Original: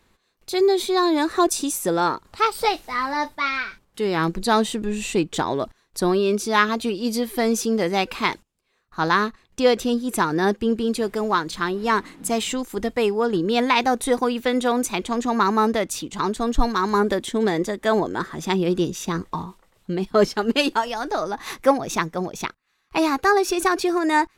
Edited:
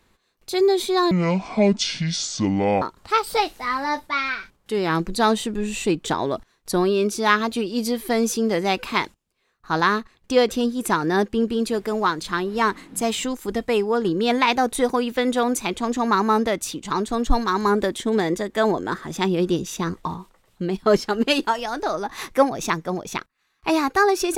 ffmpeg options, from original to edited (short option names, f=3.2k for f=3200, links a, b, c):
-filter_complex "[0:a]asplit=3[a][b][c];[a]atrim=end=1.114[d];[b]atrim=start=1.11:end=2.1,asetpts=PTS-STARTPTS,asetrate=25578,aresample=44100,atrim=end_sample=75274,asetpts=PTS-STARTPTS[e];[c]atrim=start=2.096[f];[d][e]acrossfade=d=0.004:c1=hsin:c2=hsin[g];[g][f]acrossfade=d=0.004:c1=hsin:c2=hsin"